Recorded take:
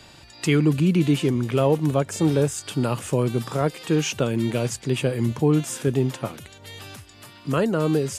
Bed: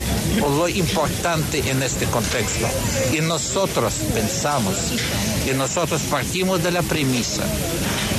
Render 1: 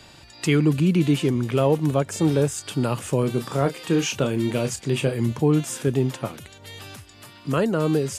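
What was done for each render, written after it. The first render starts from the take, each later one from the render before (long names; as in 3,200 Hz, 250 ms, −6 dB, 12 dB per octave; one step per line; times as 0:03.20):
0:03.20–0:05.13: double-tracking delay 29 ms −9 dB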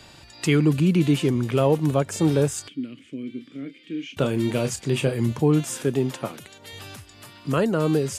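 0:02.68–0:04.17: formant filter i
0:05.83–0:06.73: high-pass filter 150 Hz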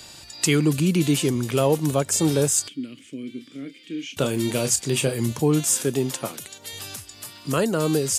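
bass and treble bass −2 dB, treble +12 dB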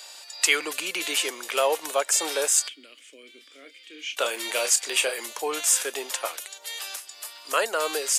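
high-pass filter 530 Hz 24 dB per octave
dynamic equaliser 2,000 Hz, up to +6 dB, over −42 dBFS, Q 0.8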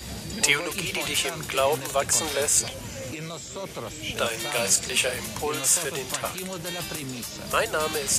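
mix in bed −15 dB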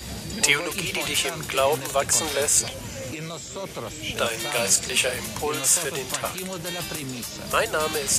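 level +1.5 dB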